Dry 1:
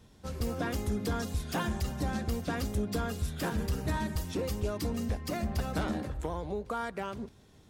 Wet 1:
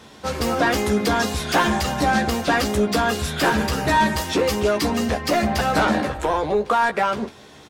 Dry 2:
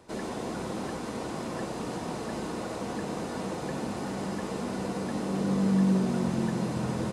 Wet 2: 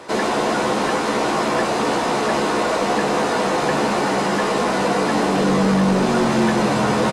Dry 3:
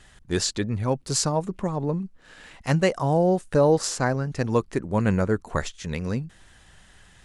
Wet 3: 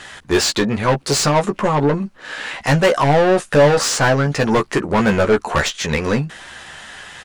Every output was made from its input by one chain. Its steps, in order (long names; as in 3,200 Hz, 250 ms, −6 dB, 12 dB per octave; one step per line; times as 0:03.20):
mid-hump overdrive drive 27 dB, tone 3,500 Hz, clips at −7 dBFS
double-tracking delay 14 ms −5.5 dB